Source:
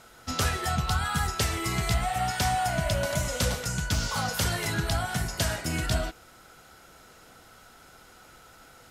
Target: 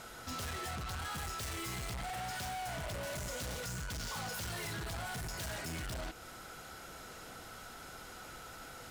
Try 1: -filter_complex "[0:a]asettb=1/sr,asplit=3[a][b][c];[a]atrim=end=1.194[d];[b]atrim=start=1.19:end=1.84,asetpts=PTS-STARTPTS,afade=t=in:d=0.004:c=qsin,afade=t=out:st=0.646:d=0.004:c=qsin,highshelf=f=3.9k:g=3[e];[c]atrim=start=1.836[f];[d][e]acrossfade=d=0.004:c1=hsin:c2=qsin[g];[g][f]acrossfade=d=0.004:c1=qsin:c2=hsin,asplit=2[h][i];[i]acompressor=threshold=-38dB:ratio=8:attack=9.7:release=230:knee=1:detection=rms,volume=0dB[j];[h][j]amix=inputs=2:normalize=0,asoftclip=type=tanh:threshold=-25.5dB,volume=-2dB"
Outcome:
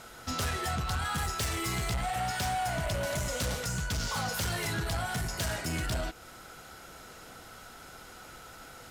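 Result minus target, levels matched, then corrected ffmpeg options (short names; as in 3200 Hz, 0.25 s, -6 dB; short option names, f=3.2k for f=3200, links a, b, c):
soft clip: distortion -7 dB
-filter_complex "[0:a]asettb=1/sr,asplit=3[a][b][c];[a]atrim=end=1.194[d];[b]atrim=start=1.19:end=1.84,asetpts=PTS-STARTPTS,afade=t=in:d=0.004:c=qsin,afade=t=out:st=0.646:d=0.004:c=qsin,highshelf=f=3.9k:g=3[e];[c]atrim=start=1.836[f];[d][e]acrossfade=d=0.004:c1=hsin:c2=qsin[g];[g][f]acrossfade=d=0.004:c1=qsin:c2=hsin,asplit=2[h][i];[i]acompressor=threshold=-38dB:ratio=8:attack=9.7:release=230:knee=1:detection=rms,volume=0dB[j];[h][j]amix=inputs=2:normalize=0,asoftclip=type=tanh:threshold=-37dB,volume=-2dB"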